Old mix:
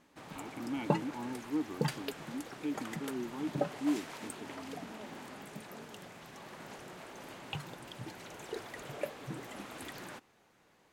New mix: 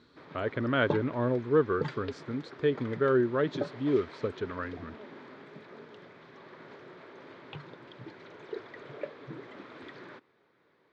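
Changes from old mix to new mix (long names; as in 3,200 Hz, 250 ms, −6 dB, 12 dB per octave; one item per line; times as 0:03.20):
speech: remove formant filter u
master: add loudspeaker in its box 120–3,800 Hz, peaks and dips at 200 Hz −6 dB, 400 Hz +5 dB, 770 Hz −8 dB, 2,800 Hz −9 dB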